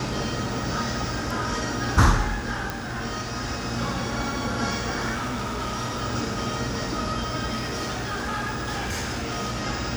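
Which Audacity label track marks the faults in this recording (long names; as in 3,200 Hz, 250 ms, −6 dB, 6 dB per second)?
2.700000	2.700000	click
5.130000	6.030000	clipping −25.5 dBFS
7.520000	9.630000	clipping −25 dBFS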